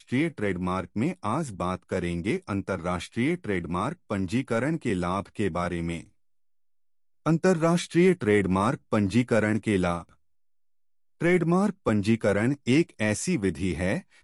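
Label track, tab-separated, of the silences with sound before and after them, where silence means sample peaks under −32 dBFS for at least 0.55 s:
6.010000	7.260000	silence
10.010000	11.220000	silence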